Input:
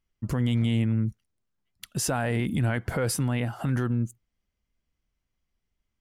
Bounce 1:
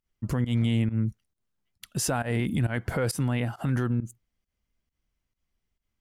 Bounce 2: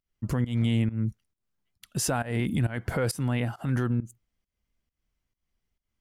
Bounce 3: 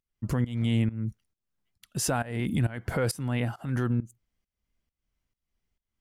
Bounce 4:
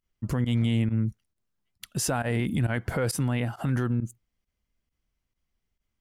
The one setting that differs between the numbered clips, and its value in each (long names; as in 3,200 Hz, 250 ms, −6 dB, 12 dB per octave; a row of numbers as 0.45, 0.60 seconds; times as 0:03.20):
fake sidechain pumping, release: 113, 212, 368, 60 milliseconds